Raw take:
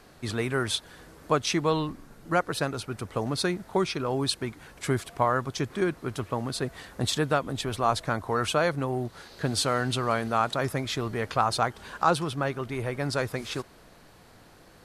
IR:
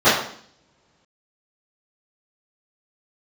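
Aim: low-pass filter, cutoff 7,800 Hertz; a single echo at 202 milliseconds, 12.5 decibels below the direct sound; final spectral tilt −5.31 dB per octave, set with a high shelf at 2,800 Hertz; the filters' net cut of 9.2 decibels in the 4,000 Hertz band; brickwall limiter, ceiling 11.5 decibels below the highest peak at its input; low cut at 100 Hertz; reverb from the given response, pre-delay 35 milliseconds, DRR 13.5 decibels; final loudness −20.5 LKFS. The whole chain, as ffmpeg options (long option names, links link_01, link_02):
-filter_complex "[0:a]highpass=100,lowpass=7800,highshelf=frequency=2800:gain=-8,equalizer=frequency=4000:width_type=o:gain=-4.5,alimiter=limit=-20dB:level=0:latency=1,aecho=1:1:202:0.237,asplit=2[link_01][link_02];[1:a]atrim=start_sample=2205,adelay=35[link_03];[link_02][link_03]afir=irnorm=-1:irlink=0,volume=-39dB[link_04];[link_01][link_04]amix=inputs=2:normalize=0,volume=12.5dB"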